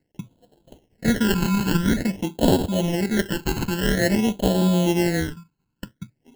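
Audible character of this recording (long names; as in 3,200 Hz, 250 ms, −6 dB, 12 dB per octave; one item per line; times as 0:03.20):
aliases and images of a low sample rate 1,200 Hz, jitter 0%
phaser sweep stages 12, 0.49 Hz, lowest notch 590–2,000 Hz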